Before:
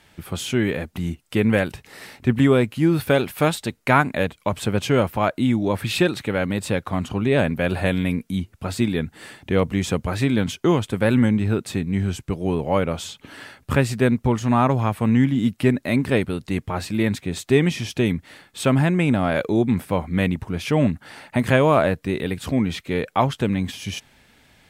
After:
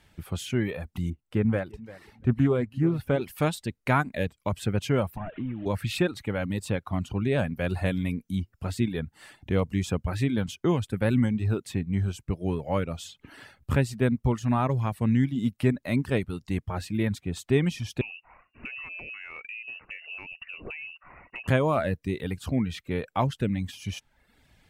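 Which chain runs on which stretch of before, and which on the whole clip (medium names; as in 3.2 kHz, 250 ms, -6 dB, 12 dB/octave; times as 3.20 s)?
1.10–3.22 s: treble shelf 2.2 kHz -11 dB + feedback delay 342 ms, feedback 16%, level -16 dB + loudspeaker Doppler distortion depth 0.15 ms
5.17–5.66 s: one-bit delta coder 16 kbps, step -31.5 dBFS + compression 4:1, threshold -24 dBFS
18.01–21.48 s: frequency inversion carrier 2.8 kHz + compression 10:1, threshold -27 dBFS
whole clip: reverb removal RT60 0.68 s; bass shelf 130 Hz +10 dB; trim -7.5 dB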